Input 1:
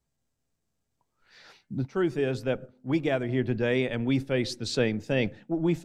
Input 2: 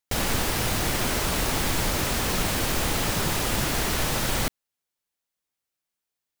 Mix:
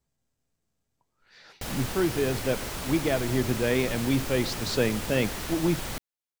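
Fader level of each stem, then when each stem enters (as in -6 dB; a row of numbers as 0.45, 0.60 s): +0.5, -9.0 dB; 0.00, 1.50 s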